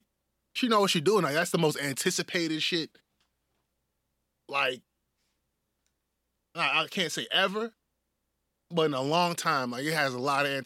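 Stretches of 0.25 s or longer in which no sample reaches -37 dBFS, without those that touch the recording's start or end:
2.85–4.50 s
4.76–6.56 s
7.68–8.72 s

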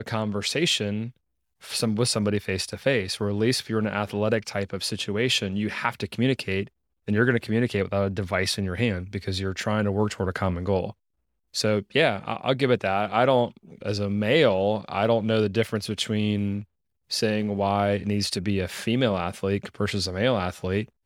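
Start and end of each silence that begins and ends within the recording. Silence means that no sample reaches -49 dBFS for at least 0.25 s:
1.11–1.61 s
6.68–7.07 s
10.92–11.54 s
16.64–17.10 s

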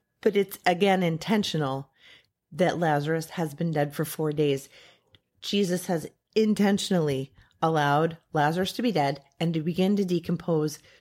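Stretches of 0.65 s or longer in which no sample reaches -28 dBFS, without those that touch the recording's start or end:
1.79–2.59 s
4.58–5.44 s

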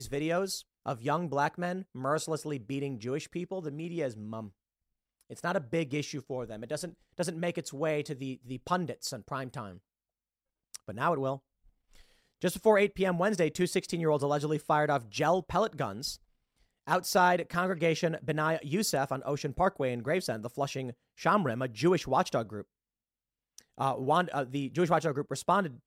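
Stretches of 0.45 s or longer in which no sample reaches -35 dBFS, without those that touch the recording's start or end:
4.46–5.32 s
9.68–10.74 s
11.35–12.43 s
16.14–16.88 s
22.61–23.58 s

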